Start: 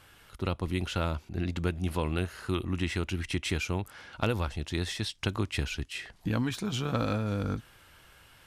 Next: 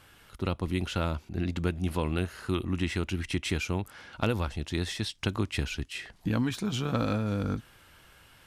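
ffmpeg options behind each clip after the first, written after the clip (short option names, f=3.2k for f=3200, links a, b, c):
-af "equalizer=f=230:w=1.3:g=2.5"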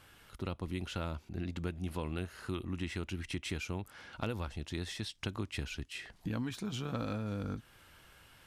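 -af "acompressor=threshold=-40dB:ratio=1.5,volume=-3dB"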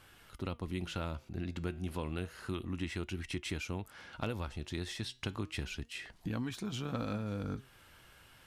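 -af "flanger=delay=2.6:depth=5.8:regen=88:speed=0.31:shape=sinusoidal,volume=4.5dB"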